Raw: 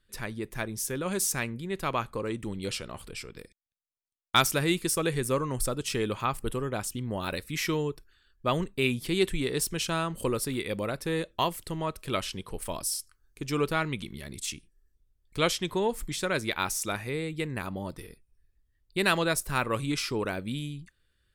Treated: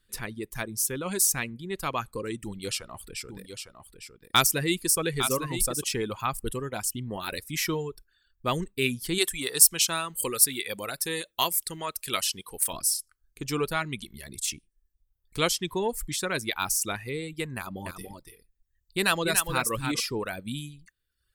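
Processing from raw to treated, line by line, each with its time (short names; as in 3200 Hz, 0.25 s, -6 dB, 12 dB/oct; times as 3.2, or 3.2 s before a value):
2.43–5.84 echo 0.856 s -8 dB
9.18–12.73 tilt +2.5 dB/oct
17.57–20 echo 0.287 s -5 dB
whole clip: reverb removal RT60 0.92 s; high shelf 5600 Hz +8.5 dB; notch 590 Hz, Q 12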